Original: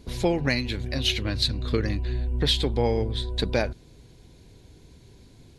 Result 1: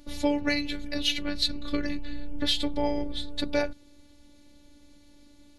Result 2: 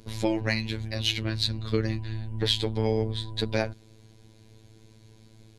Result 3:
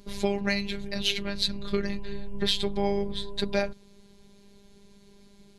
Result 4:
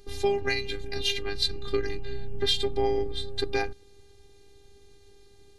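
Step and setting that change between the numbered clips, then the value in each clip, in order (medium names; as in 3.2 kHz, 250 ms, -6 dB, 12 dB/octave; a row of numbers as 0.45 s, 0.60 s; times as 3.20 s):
robot voice, frequency: 290 Hz, 110 Hz, 200 Hz, 400 Hz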